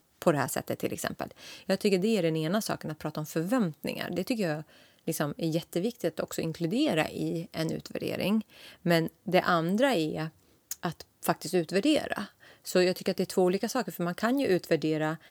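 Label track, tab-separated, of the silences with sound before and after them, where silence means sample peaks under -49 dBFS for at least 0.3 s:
10.300000	10.710000	silence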